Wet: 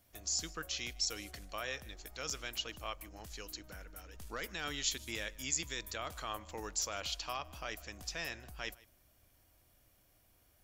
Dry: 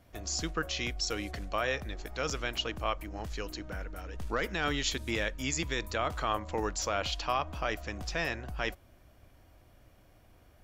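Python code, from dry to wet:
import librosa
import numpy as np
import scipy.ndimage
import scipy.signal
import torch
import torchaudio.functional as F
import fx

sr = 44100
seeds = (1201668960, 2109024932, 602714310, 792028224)

p1 = librosa.effects.preemphasis(x, coef=0.8, zi=[0.0])
p2 = p1 + fx.echo_single(p1, sr, ms=153, db=-22.5, dry=0)
y = p2 * 10.0 ** (2.0 / 20.0)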